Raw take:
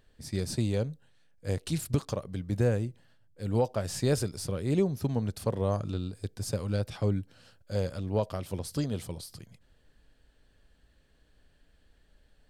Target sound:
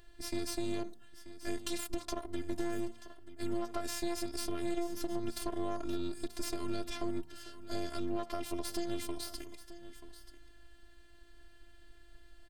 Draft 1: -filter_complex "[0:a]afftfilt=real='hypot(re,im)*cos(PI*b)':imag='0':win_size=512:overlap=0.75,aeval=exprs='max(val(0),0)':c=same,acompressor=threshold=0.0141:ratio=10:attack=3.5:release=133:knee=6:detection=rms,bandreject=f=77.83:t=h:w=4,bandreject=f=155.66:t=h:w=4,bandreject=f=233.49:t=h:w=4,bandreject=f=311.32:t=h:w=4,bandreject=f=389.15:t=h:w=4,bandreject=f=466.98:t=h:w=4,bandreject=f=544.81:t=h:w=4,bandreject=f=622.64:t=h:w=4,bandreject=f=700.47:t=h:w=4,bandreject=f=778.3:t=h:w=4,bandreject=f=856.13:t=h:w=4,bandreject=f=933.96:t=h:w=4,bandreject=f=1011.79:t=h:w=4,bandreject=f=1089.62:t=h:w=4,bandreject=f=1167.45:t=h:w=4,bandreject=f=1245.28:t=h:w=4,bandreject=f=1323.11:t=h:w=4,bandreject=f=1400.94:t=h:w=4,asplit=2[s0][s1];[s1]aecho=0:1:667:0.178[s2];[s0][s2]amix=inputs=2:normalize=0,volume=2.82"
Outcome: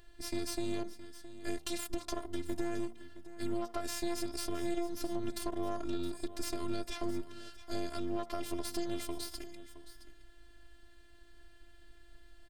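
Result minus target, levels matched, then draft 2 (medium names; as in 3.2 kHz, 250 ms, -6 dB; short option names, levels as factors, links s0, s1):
echo 267 ms early
-filter_complex "[0:a]afftfilt=real='hypot(re,im)*cos(PI*b)':imag='0':win_size=512:overlap=0.75,aeval=exprs='max(val(0),0)':c=same,acompressor=threshold=0.0141:ratio=10:attack=3.5:release=133:knee=6:detection=rms,bandreject=f=77.83:t=h:w=4,bandreject=f=155.66:t=h:w=4,bandreject=f=233.49:t=h:w=4,bandreject=f=311.32:t=h:w=4,bandreject=f=389.15:t=h:w=4,bandreject=f=466.98:t=h:w=4,bandreject=f=544.81:t=h:w=4,bandreject=f=622.64:t=h:w=4,bandreject=f=700.47:t=h:w=4,bandreject=f=778.3:t=h:w=4,bandreject=f=856.13:t=h:w=4,bandreject=f=933.96:t=h:w=4,bandreject=f=1011.79:t=h:w=4,bandreject=f=1089.62:t=h:w=4,bandreject=f=1167.45:t=h:w=4,bandreject=f=1245.28:t=h:w=4,bandreject=f=1323.11:t=h:w=4,bandreject=f=1400.94:t=h:w=4,asplit=2[s0][s1];[s1]aecho=0:1:934:0.178[s2];[s0][s2]amix=inputs=2:normalize=0,volume=2.82"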